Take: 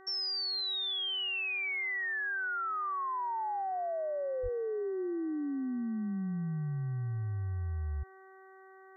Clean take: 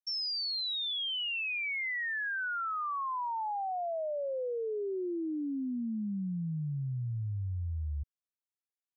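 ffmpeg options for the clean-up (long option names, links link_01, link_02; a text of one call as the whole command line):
ffmpeg -i in.wav -filter_complex "[0:a]bandreject=frequency=381.7:width_type=h:width=4,bandreject=frequency=763.4:width_type=h:width=4,bandreject=frequency=1145.1:width_type=h:width=4,bandreject=frequency=1526.8:width_type=h:width=4,bandreject=frequency=1908.5:width_type=h:width=4,asplit=3[link_01][link_02][link_03];[link_01]afade=type=out:start_time=4.42:duration=0.02[link_04];[link_02]highpass=frequency=140:width=0.5412,highpass=frequency=140:width=1.3066,afade=type=in:start_time=4.42:duration=0.02,afade=type=out:start_time=4.54:duration=0.02[link_05];[link_03]afade=type=in:start_time=4.54:duration=0.02[link_06];[link_04][link_05][link_06]amix=inputs=3:normalize=0" out.wav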